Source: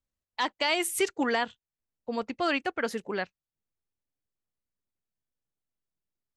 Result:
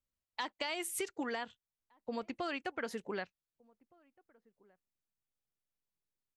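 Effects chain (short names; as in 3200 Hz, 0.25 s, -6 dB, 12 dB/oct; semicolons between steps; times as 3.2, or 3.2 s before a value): compressor, threshold -30 dBFS, peak gain reduction 9 dB; outdoor echo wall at 260 m, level -27 dB; gain -4.5 dB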